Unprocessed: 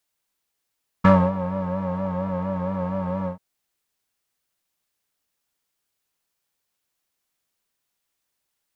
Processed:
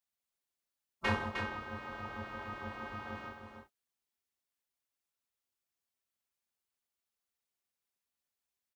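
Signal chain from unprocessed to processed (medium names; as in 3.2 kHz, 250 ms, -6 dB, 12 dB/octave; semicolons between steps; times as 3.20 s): robot voice 313 Hz; spectral gate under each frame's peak -15 dB weak; delay 307 ms -6 dB; trim +1.5 dB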